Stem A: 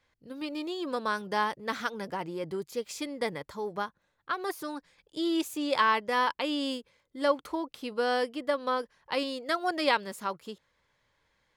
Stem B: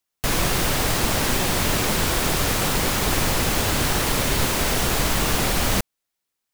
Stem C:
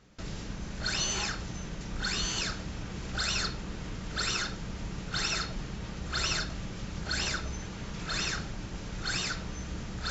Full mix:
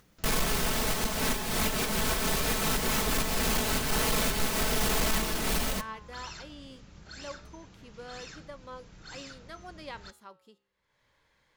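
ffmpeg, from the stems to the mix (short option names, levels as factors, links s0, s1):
-filter_complex "[0:a]volume=0.251,asplit=2[s0][s1];[1:a]aecho=1:1:4.6:0.65,volume=1.12[s2];[2:a]volume=0.335[s3];[s1]apad=whole_len=288552[s4];[s2][s4]sidechaincompress=threshold=0.00562:ratio=4:attack=5.7:release=185[s5];[s0][s5][s3]amix=inputs=3:normalize=0,acompressor=mode=upward:threshold=0.00355:ratio=2.5,asoftclip=type=tanh:threshold=0.141,flanger=delay=5.9:depth=9.5:regen=87:speed=0.23:shape=sinusoidal"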